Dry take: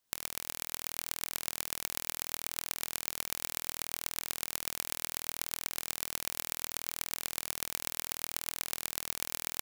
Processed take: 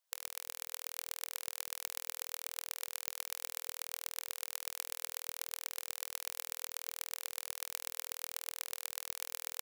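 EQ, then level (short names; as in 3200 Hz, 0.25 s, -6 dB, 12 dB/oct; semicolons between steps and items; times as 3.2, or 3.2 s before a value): brick-wall FIR high-pass 490 Hz; -4.5 dB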